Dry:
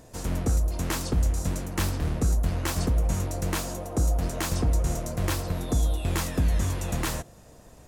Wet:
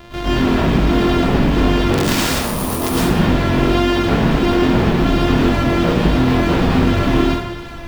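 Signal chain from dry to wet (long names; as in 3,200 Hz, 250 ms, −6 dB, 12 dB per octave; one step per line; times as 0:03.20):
samples sorted by size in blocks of 128 samples
sine wavefolder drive 13 dB, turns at −14.5 dBFS
drawn EQ curve 470 Hz 0 dB, 3,400 Hz +2 dB, 9,400 Hz −18 dB
pitch vibrato 1.4 Hz 32 cents
high-shelf EQ 6,900 Hz +9 dB
0:01.92–0:02.91: log-companded quantiser 2 bits
0:02.31–0:02.85: gain on a spectral selection 1,300–8,600 Hz −11 dB
dense smooth reverb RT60 0.9 s, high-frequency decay 0.75×, pre-delay 95 ms, DRR −8.5 dB
level −6 dB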